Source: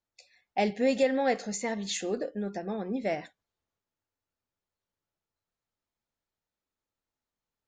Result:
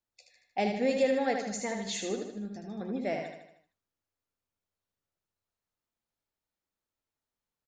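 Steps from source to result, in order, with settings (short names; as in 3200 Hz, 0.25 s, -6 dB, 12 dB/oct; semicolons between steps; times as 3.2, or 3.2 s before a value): 2.2–2.81 graphic EQ 500/1000/2000 Hz -11/-8/-8 dB; feedback echo 77 ms, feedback 51%, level -5.5 dB; gain -3 dB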